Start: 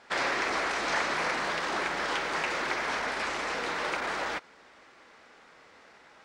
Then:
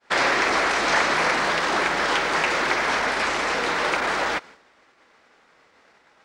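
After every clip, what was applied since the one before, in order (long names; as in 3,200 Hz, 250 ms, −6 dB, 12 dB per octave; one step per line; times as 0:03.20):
downward expander −47 dBFS
level +8.5 dB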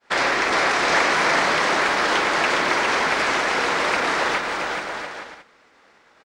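bouncing-ball delay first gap 410 ms, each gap 0.65×, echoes 5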